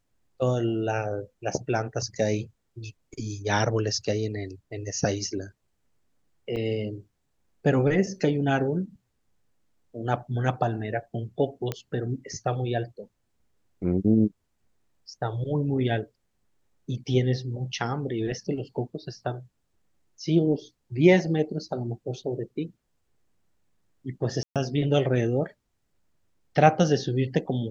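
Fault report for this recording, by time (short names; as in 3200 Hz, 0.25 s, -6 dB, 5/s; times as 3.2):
6.56–6.57 gap 5.7 ms
11.72 pop -15 dBFS
24.43–24.56 gap 0.127 s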